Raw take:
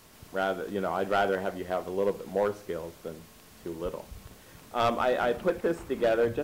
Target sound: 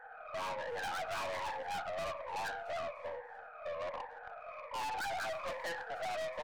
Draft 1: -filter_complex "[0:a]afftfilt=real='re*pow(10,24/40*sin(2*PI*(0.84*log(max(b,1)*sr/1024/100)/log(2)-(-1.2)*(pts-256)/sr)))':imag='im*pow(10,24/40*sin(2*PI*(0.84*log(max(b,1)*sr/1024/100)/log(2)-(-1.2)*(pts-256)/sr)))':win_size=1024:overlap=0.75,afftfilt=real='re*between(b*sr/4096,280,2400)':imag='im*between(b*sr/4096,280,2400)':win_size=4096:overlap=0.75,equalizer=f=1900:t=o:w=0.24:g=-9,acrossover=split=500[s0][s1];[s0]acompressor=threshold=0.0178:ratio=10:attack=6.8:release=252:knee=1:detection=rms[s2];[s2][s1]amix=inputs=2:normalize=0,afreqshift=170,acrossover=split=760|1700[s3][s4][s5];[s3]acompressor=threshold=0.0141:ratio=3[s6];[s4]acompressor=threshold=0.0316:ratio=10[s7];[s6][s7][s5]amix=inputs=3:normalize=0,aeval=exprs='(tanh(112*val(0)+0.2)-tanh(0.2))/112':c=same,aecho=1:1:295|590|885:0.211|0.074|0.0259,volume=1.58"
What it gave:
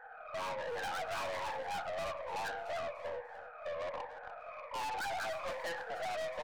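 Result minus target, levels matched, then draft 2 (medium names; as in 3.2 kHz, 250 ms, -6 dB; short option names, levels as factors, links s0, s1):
compression: peak gain reduction -7 dB; echo-to-direct +6.5 dB
-filter_complex "[0:a]afftfilt=real='re*pow(10,24/40*sin(2*PI*(0.84*log(max(b,1)*sr/1024/100)/log(2)-(-1.2)*(pts-256)/sr)))':imag='im*pow(10,24/40*sin(2*PI*(0.84*log(max(b,1)*sr/1024/100)/log(2)-(-1.2)*(pts-256)/sr)))':win_size=1024:overlap=0.75,afftfilt=real='re*between(b*sr/4096,280,2400)':imag='im*between(b*sr/4096,280,2400)':win_size=4096:overlap=0.75,equalizer=f=1900:t=o:w=0.24:g=-9,acrossover=split=500[s0][s1];[s0]acompressor=threshold=0.0075:ratio=10:attack=6.8:release=252:knee=1:detection=rms[s2];[s2][s1]amix=inputs=2:normalize=0,afreqshift=170,acrossover=split=760|1700[s3][s4][s5];[s3]acompressor=threshold=0.0141:ratio=3[s6];[s4]acompressor=threshold=0.0316:ratio=10[s7];[s6][s7][s5]amix=inputs=3:normalize=0,aeval=exprs='(tanh(112*val(0)+0.2)-tanh(0.2))/112':c=same,aecho=1:1:295|590|885:0.1|0.035|0.0123,volume=1.58"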